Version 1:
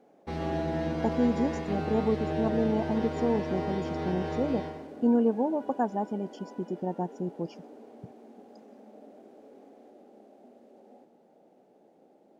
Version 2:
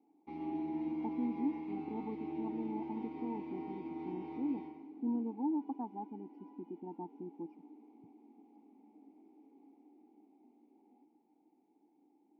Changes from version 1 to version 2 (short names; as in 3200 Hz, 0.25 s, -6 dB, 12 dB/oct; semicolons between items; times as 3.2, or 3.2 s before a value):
speech: add running mean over 13 samples; master: add vowel filter u